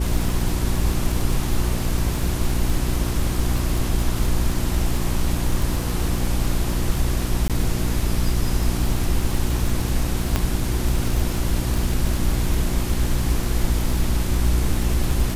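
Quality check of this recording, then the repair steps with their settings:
crackle 39/s -23 dBFS
hum 60 Hz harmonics 6 -25 dBFS
7.48–7.5 gap 17 ms
10.36 pop -6 dBFS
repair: de-click; de-hum 60 Hz, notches 6; interpolate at 7.48, 17 ms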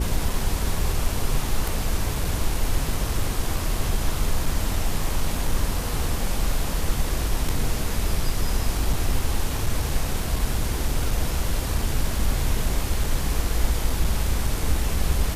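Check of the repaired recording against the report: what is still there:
none

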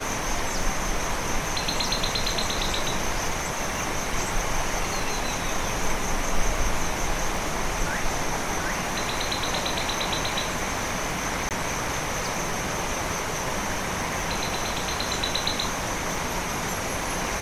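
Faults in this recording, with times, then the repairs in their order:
crackle 30/s -31 dBFS
11.49–11.51 gap 18 ms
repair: de-click; interpolate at 11.49, 18 ms

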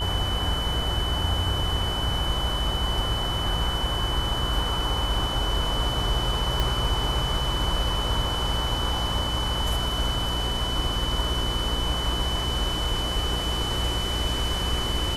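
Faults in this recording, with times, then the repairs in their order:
buzz 60 Hz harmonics 39 -31 dBFS
tone 3000 Hz -29 dBFS
6.6 pop -11 dBFS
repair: de-click; de-hum 60 Hz, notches 39; notch 3000 Hz, Q 30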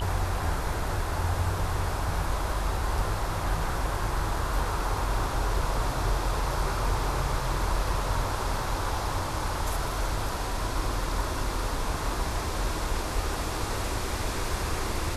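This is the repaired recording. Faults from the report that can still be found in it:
6.6 pop

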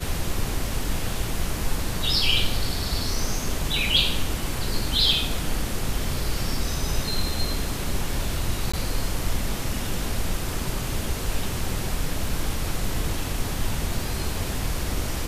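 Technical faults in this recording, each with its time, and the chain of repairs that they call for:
8.72–8.73 gap 15 ms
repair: interpolate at 8.72, 15 ms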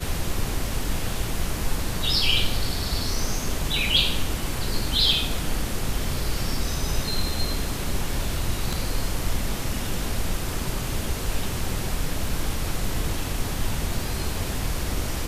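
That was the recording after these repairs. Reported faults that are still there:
none

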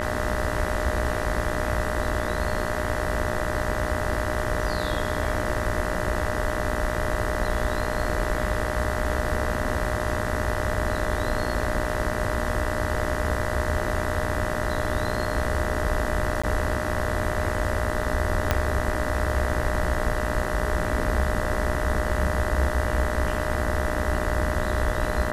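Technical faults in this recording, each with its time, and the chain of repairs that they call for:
buzz 60 Hz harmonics 33 -30 dBFS
tone 610 Hz -31 dBFS
16.42–16.43 gap 15 ms
18.51 pop -6 dBFS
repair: de-click; notch 610 Hz, Q 30; de-hum 60 Hz, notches 33; interpolate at 16.42, 15 ms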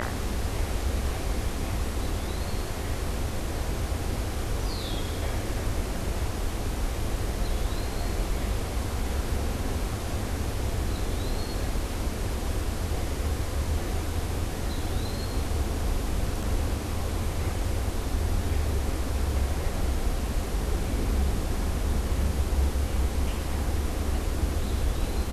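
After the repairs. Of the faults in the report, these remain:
18.51 pop

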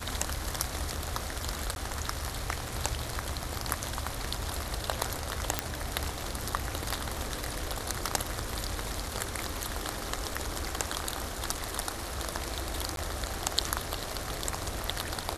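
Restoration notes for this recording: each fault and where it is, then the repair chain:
1.75–1.76 gap 11 ms
5.59 pop
12.96–12.97 gap 12 ms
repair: de-click; interpolate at 1.75, 11 ms; interpolate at 12.96, 12 ms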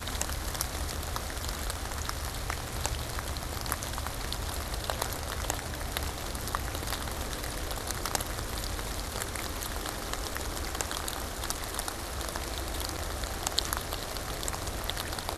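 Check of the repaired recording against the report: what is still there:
none

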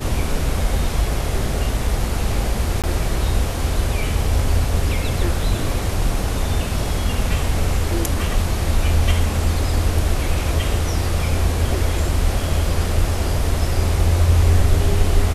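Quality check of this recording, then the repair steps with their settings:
2.82–2.84 gap 17 ms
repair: interpolate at 2.82, 17 ms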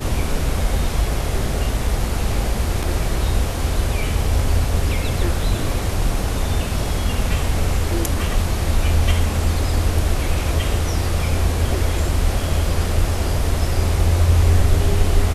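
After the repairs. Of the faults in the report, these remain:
none

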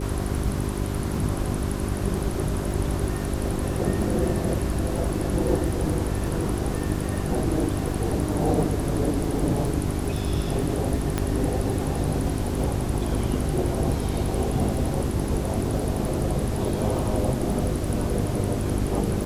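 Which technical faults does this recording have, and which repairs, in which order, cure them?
crackle 40/s -32 dBFS
hum 50 Hz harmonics 8 -29 dBFS
11.18 pop -10 dBFS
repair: de-click; de-hum 50 Hz, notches 8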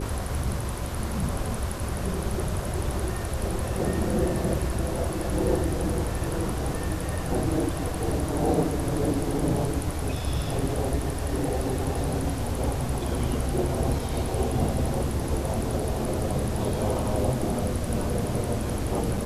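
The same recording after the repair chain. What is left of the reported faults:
11.18 pop

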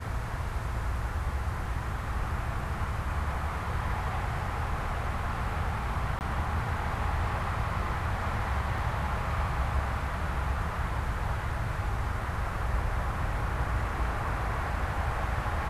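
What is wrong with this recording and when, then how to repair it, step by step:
6.19–6.21 gap 19 ms
8.78 gap 2.6 ms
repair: interpolate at 6.19, 19 ms; interpolate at 8.78, 2.6 ms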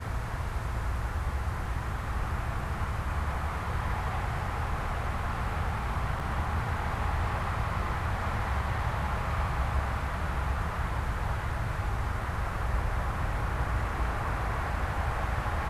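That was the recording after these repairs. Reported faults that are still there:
none

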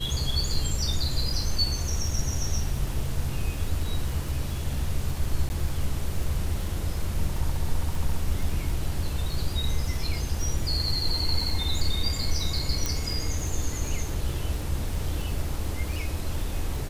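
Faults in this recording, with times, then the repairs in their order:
crackle 54/s -32 dBFS
5.49–5.5 gap 10 ms
12.86 pop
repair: de-click; interpolate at 5.49, 10 ms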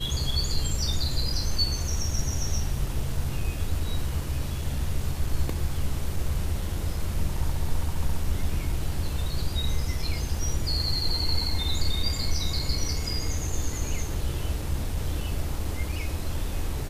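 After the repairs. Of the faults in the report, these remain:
none

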